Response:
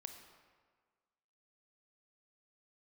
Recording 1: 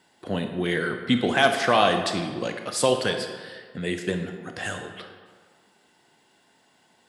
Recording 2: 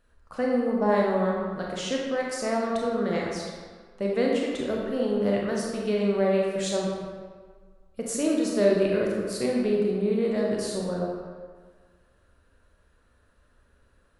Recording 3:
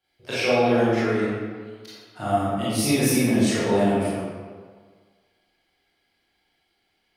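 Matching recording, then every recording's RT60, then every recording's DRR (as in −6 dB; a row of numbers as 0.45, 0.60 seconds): 1; 1.6, 1.6, 1.6 seconds; 5.5, −2.5, −11.5 decibels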